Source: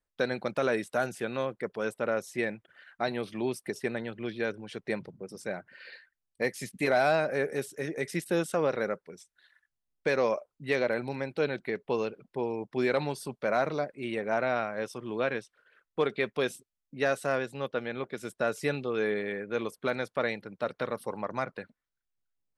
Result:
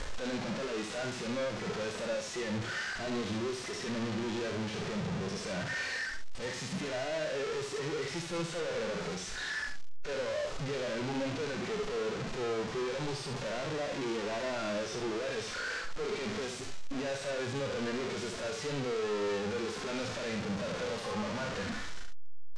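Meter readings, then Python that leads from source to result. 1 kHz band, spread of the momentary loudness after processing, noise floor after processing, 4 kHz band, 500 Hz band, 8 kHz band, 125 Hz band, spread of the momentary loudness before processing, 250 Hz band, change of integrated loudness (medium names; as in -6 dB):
-5.5 dB, 3 LU, -40 dBFS, +4.5 dB, -5.0 dB, +4.5 dB, +0.5 dB, 9 LU, -1.5 dB, -4.0 dB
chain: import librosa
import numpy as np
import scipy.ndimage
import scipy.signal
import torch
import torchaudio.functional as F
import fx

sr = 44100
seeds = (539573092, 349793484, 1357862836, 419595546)

p1 = np.sign(x) * np.sqrt(np.mean(np.square(x)))
p2 = p1 + fx.echo_single(p1, sr, ms=71, db=-9.5, dry=0)
p3 = fx.hpss(p2, sr, part='percussive', gain_db=-17)
y = scipy.signal.sosfilt(scipy.signal.butter(4, 6800.0, 'lowpass', fs=sr, output='sos'), p3)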